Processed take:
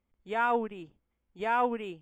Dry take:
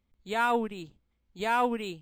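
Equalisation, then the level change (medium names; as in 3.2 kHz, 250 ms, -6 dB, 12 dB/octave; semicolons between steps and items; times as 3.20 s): Butterworth band-stop 4 kHz, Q 5.3; tone controls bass -6 dB, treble -6 dB; treble shelf 4 kHz -11.5 dB; 0.0 dB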